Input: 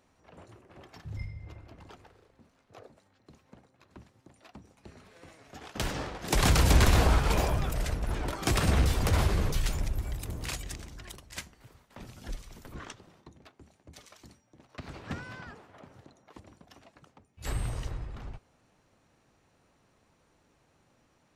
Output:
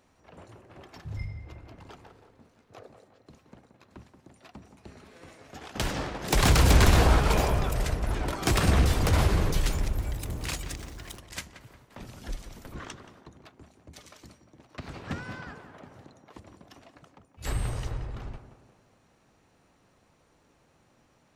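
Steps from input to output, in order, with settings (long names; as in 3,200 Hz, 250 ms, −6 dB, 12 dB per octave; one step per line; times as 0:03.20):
stylus tracing distortion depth 0.021 ms
0:09.31–0:11.19: centre clipping without the shift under −49.5 dBFS
on a send: tape delay 176 ms, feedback 56%, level −7.5 dB, low-pass 1,500 Hz
on the sum: level +2.5 dB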